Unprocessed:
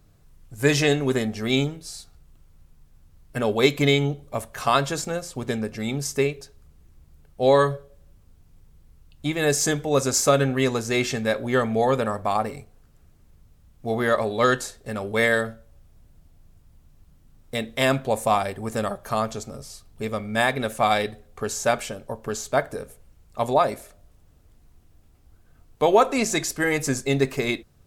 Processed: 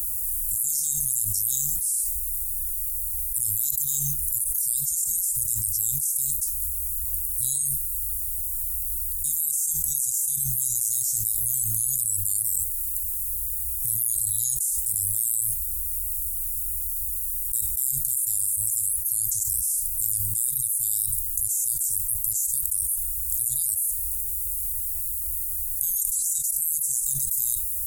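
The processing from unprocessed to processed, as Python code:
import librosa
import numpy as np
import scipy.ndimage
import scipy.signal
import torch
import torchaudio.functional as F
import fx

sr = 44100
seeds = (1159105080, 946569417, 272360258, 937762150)

y = fx.echo_throw(x, sr, start_s=17.72, length_s=0.54, ms=310, feedback_pct=30, wet_db=-9.0)
y = scipy.signal.sosfilt(scipy.signal.cheby2(4, 70, [280.0, 2600.0], 'bandstop', fs=sr, output='sos'), y)
y = fx.tilt_eq(y, sr, slope=4.0)
y = fx.env_flatten(y, sr, amount_pct=100)
y = y * librosa.db_to_amplitude(-7.0)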